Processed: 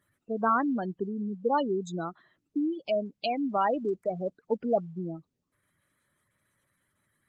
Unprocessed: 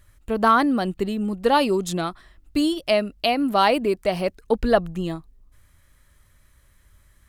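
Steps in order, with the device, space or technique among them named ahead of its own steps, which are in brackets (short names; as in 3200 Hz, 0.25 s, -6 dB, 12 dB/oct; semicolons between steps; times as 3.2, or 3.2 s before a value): noise-suppressed video call (HPF 130 Hz 24 dB/oct; spectral gate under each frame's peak -15 dB strong; gain -7.5 dB; Opus 20 kbps 48000 Hz)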